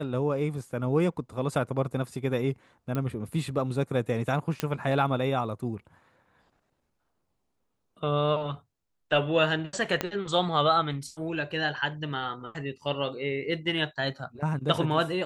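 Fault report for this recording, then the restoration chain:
2.95 pop -18 dBFS
4.6 pop -12 dBFS
10.01 pop -11 dBFS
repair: de-click

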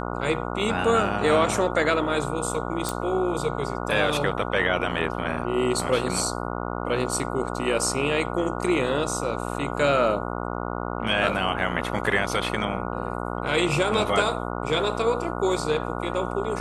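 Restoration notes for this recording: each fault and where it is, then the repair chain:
buzz 60 Hz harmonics 24 -30 dBFS
2.89 pop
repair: de-click; de-hum 60 Hz, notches 24

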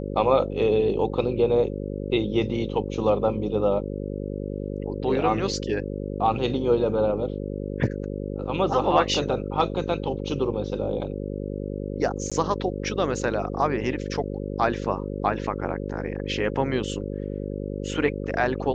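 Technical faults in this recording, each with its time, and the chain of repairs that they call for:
buzz 50 Hz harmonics 11 -31 dBFS
12.3–12.32 gap 16 ms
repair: de-hum 50 Hz, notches 11; interpolate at 12.3, 16 ms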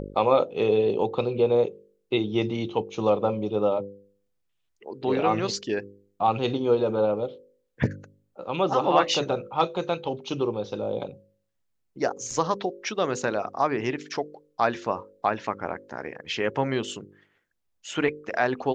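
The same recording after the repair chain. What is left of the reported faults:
none

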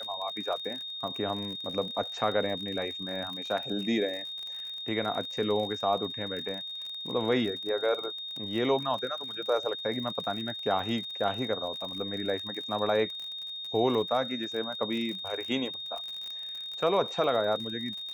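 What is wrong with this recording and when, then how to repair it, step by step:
crackle 48/s -35 dBFS
tone 3700 Hz -36 dBFS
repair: de-click; notch 3700 Hz, Q 30

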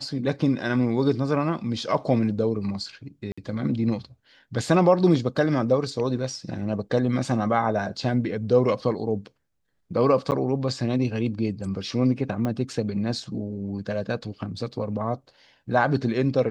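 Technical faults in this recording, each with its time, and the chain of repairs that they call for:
3.32–3.38 gap 55 ms
10.31–10.32 gap 9.5 ms
12.45 pop -16 dBFS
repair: de-click; interpolate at 3.32, 55 ms; interpolate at 10.31, 9.5 ms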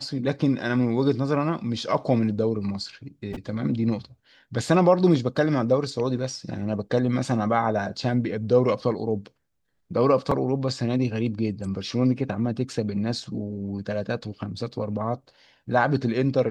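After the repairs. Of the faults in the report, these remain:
12.45 pop

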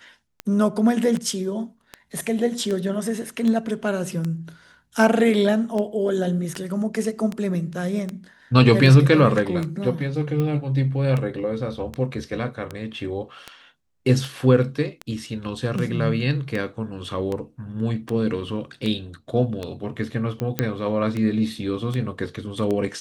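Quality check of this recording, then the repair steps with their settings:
tick 78 rpm -15 dBFS
20.59 pop -7 dBFS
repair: de-click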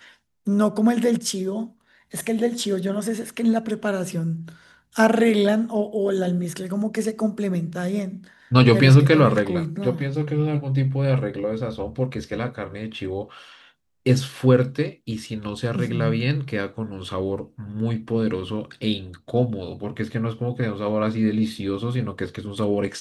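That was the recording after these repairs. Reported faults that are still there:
none

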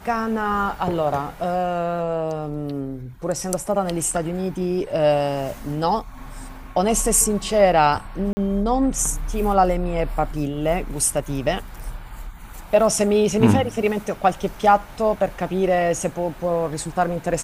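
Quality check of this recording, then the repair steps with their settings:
8.33–8.37 gap 40 ms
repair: interpolate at 8.33, 40 ms

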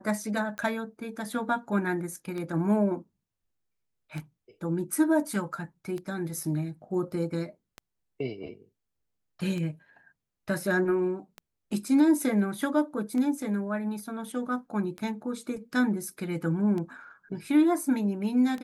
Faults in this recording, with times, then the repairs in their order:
tick 33 1/3 rpm -23 dBFS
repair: de-click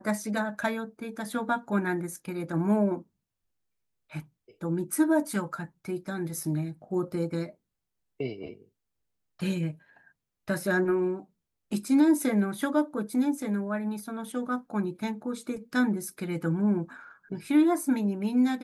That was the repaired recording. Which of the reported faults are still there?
none

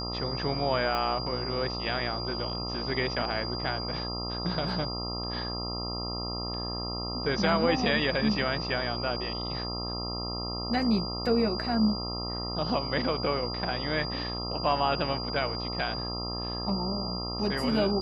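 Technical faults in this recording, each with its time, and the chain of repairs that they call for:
buzz 60 Hz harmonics 22 -36 dBFS
tone 4800 Hz -35 dBFS
0.95 pop -17 dBFS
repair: de-click; de-hum 60 Hz, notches 22; notch 4800 Hz, Q 30

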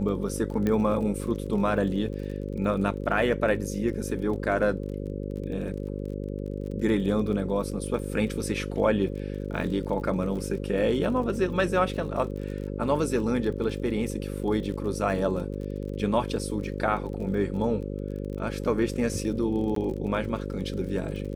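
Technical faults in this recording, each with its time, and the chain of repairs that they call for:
buzz 50 Hz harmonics 11 -33 dBFS
crackle 33/s -36 dBFS
0.67 pop -15 dBFS
19.75–19.76 gap 13 ms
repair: de-click; de-hum 50 Hz, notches 11; interpolate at 19.75, 13 ms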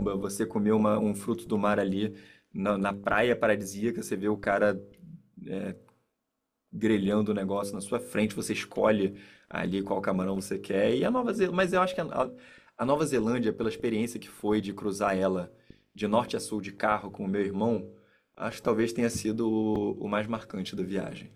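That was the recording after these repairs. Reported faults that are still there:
none

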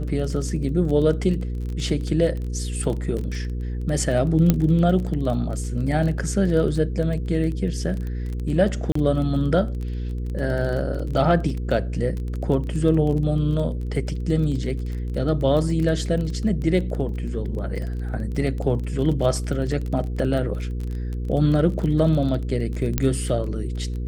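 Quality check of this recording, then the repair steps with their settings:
crackle 20/s -28 dBFS
hum 60 Hz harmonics 8 -27 dBFS
4.5 pop -5 dBFS
8.92–8.95 gap 34 ms
22.98 pop -6 dBFS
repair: de-click; de-hum 60 Hz, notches 8; interpolate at 8.92, 34 ms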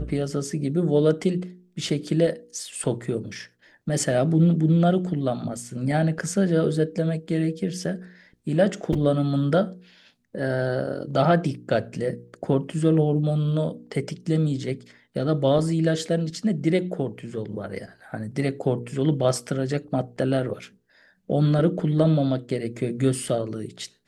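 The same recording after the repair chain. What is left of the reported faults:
none

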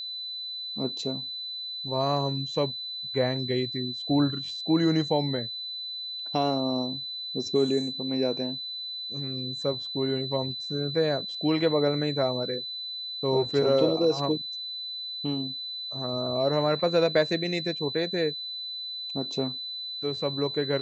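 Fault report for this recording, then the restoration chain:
tone 4000 Hz -33 dBFS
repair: notch 4000 Hz, Q 30

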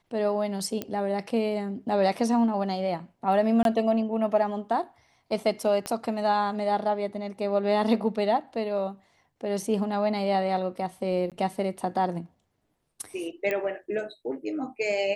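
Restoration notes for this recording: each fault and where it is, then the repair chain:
0.82 pop -16 dBFS
3.63–3.65 gap 22 ms
5.86 pop -17 dBFS
11.3–11.32 gap 17 ms
13.51 pop -16 dBFS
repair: de-click; interpolate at 3.63, 22 ms; interpolate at 11.3, 17 ms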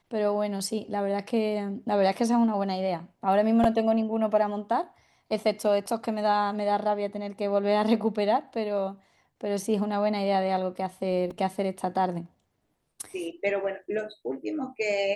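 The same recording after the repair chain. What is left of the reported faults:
5.86 pop

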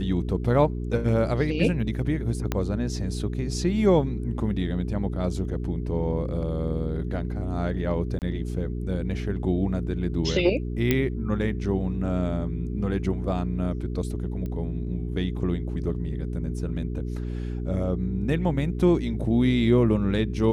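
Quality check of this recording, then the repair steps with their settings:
hum 60 Hz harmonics 7 -30 dBFS
2.52 pop -11 dBFS
8.19–8.22 gap 28 ms
10.91 pop -8 dBFS
14.46 pop -23 dBFS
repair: de-click; de-hum 60 Hz, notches 7; interpolate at 8.19, 28 ms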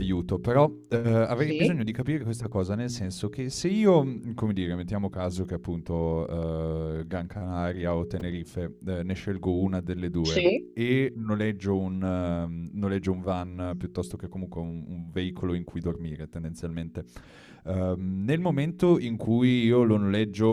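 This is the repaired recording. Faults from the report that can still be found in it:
2.52 pop

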